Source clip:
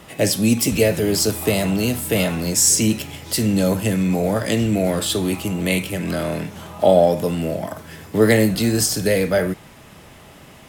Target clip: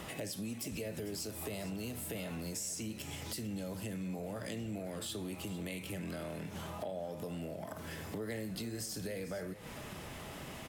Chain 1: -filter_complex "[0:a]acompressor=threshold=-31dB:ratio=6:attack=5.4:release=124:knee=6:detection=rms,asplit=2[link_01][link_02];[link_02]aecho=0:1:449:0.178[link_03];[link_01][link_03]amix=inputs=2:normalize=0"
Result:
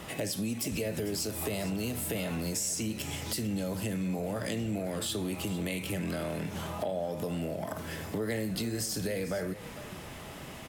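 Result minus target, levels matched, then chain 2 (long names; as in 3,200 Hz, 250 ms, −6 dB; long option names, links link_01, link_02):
downward compressor: peak gain reduction −7.5 dB
-filter_complex "[0:a]acompressor=threshold=-40dB:ratio=6:attack=5.4:release=124:knee=6:detection=rms,asplit=2[link_01][link_02];[link_02]aecho=0:1:449:0.178[link_03];[link_01][link_03]amix=inputs=2:normalize=0"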